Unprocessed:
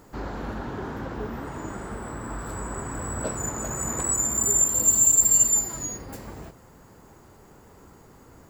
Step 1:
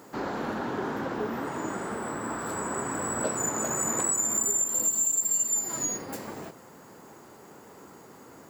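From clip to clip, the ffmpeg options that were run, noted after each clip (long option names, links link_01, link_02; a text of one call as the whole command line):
ffmpeg -i in.wav -af "highpass=200,acompressor=threshold=-27dB:ratio=10,volume=3.5dB" out.wav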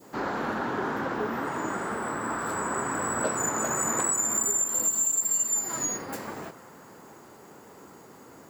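ffmpeg -i in.wav -af "adynamicequalizer=threshold=0.00355:dfrequency=1400:dqfactor=0.89:tfrequency=1400:tqfactor=0.89:attack=5:release=100:ratio=0.375:range=2.5:mode=boostabove:tftype=bell" out.wav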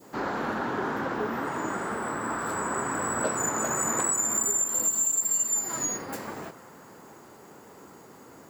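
ffmpeg -i in.wav -af anull out.wav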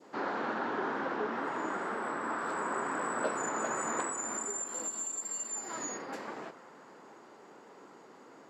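ffmpeg -i in.wav -af "highpass=250,lowpass=4900,volume=-3.5dB" out.wav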